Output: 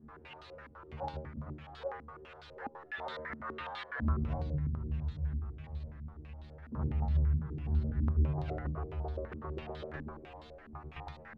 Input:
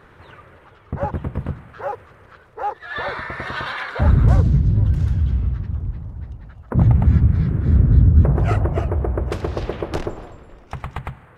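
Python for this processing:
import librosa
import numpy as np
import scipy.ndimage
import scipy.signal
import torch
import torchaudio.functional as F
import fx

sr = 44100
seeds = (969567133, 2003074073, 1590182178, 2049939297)

y = x + 0.5 * 10.0 ** (-30.5 / 20.0) * np.sign(x)
y = fx.stiff_resonator(y, sr, f0_hz=74.0, decay_s=0.61, stiffness=0.002)
y = fx.filter_held_lowpass(y, sr, hz=12.0, low_hz=250.0, high_hz=3900.0)
y = F.gain(torch.from_numpy(y), -8.5).numpy()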